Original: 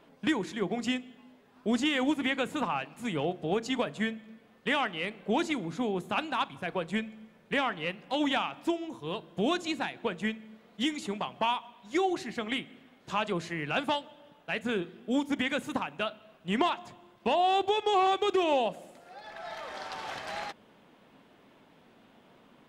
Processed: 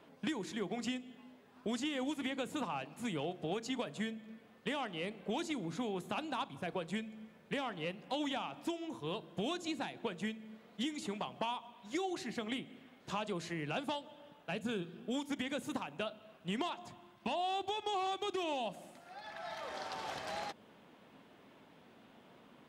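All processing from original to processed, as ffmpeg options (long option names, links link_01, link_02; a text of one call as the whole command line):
ffmpeg -i in.wav -filter_complex "[0:a]asettb=1/sr,asplit=3[link_01][link_02][link_03];[link_01]atrim=end=14.514[link_04];[link_02]atrim=start=14.51:end=15.08,asetpts=PTS-STARTPTS,afade=type=in:duration=0.004:curve=qsin,afade=type=out:start_time=0.566:duration=0.004:curve=qsin,equalizer=frequency=150:width=1.9:gain=7.5,bandreject=frequency=2000:width=6.5[link_05];[link_03]atrim=start=15.076[link_06];[link_04][link_05]acrossfade=duration=0.004:curve1=hsin:curve2=qsin[link_07];[link_07][link_06]acrossfade=duration=0.004:curve1=qsin:curve2=hsin,asettb=1/sr,asplit=3[link_08][link_09][link_10];[link_08]atrim=end=16.884[link_11];[link_09]atrim=start=16.88:end=19.62,asetpts=PTS-STARTPTS,afade=type=in:duration=0.004:curve=qsin,afade=type=out:start_time=2.736:duration=0.004:curve=qsin,equalizer=frequency=470:width_type=o:width=0.45:gain=-10.5,bandreject=frequency=7300:width=28[link_12];[link_10]atrim=start=19.616[link_13];[link_11][link_12]acrossfade=duration=0.004:curve1=hsin:curve2=qsin[link_14];[link_14][link_13]acrossfade=duration=0.004:curve1=qsin:curve2=hsin,highpass=48,acrossover=split=970|3400[link_15][link_16][link_17];[link_15]acompressor=threshold=-35dB:ratio=4[link_18];[link_16]acompressor=threshold=-47dB:ratio=4[link_19];[link_17]acompressor=threshold=-44dB:ratio=4[link_20];[link_18][link_19][link_20]amix=inputs=3:normalize=0,volume=-1.5dB" out.wav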